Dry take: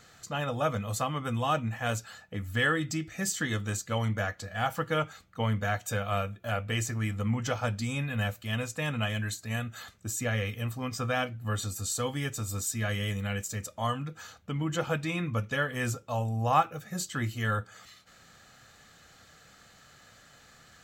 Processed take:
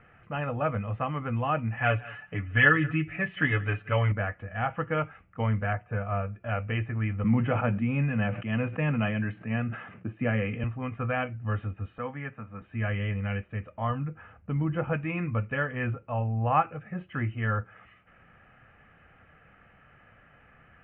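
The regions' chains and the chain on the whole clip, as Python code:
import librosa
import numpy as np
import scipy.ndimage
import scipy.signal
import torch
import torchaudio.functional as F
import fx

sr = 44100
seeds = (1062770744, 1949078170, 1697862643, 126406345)

y = fx.chain(x, sr, fx.high_shelf(hz=2100.0, db=10.5),
    fx.comb(ms=7.0, depth=0.82),
    fx.echo_single(ms=179, db=-21.0), at=(1.77, 4.12))
y = fx.chain(y, sr, fx.lowpass(hz=1800.0, slope=12),
    fx.notch_comb(f0_hz=270.0), at=(5.73, 6.35))
y = fx.chain(y, sr, fx.highpass(hz=140.0, slope=24),
    fx.low_shelf(hz=360.0, db=8.5),
    fx.sustainer(db_per_s=59.0), at=(7.24, 10.64))
y = fx.chain(y, sr, fx.cheby1_bandpass(low_hz=200.0, high_hz=1900.0, order=2),
    fx.peak_eq(hz=340.0, db=-13.0, octaves=0.49), at=(11.98, 12.62))
y = fx.chain(y, sr, fx.lowpass(hz=1900.0, slope=6),
    fx.low_shelf(hz=160.0, db=5.0), at=(13.9, 14.93))
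y = scipy.signal.sosfilt(scipy.signal.butter(12, 2800.0, 'lowpass', fs=sr, output='sos'), y)
y = fx.low_shelf(y, sr, hz=94.0, db=6.0)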